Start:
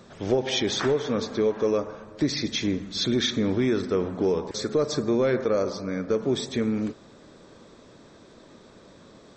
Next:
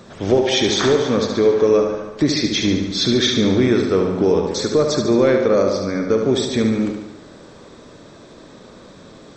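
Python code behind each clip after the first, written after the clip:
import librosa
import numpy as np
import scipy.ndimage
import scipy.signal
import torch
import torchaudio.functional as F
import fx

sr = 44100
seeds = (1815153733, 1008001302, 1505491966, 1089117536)

y = fx.echo_feedback(x, sr, ms=72, feedback_pct=58, wet_db=-6.0)
y = y * 10.0 ** (7.0 / 20.0)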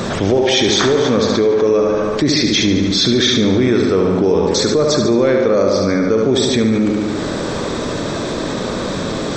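y = fx.env_flatten(x, sr, amount_pct=70)
y = y * 10.0 ** (-1.0 / 20.0)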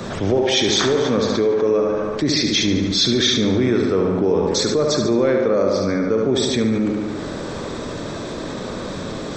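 y = fx.band_widen(x, sr, depth_pct=40)
y = y * 10.0 ** (-4.0 / 20.0)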